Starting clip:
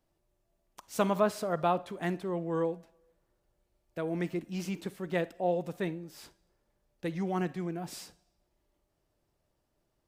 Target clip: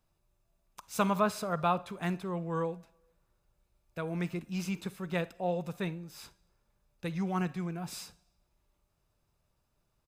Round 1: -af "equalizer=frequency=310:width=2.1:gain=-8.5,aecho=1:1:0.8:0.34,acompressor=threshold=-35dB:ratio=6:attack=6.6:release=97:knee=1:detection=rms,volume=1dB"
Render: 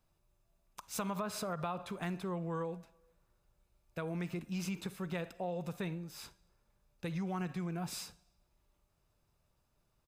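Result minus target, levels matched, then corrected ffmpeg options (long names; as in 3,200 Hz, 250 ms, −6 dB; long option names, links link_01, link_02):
downward compressor: peak gain reduction +13 dB
-af "equalizer=frequency=310:width=2.1:gain=-8.5,aecho=1:1:0.8:0.34,volume=1dB"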